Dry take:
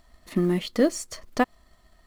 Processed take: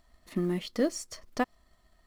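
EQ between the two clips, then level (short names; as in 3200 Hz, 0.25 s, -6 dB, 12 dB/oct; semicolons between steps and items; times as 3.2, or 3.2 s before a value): dynamic EQ 5400 Hz, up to +5 dB, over -54 dBFS, Q 5.2; -6.5 dB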